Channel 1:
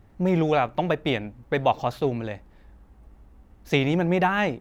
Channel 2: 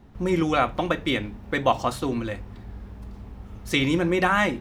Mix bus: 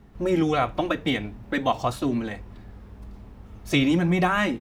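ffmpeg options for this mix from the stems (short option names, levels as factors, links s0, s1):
-filter_complex "[0:a]acrossover=split=360|3000[s0][s1][s2];[s1]acompressor=threshold=0.0282:ratio=6[s3];[s0][s3][s2]amix=inputs=3:normalize=0,asplit=2[s4][s5];[s5]adelay=2.2,afreqshift=-1.7[s6];[s4][s6]amix=inputs=2:normalize=1,volume=1.33[s7];[1:a]volume=0.708[s8];[s7][s8]amix=inputs=2:normalize=0"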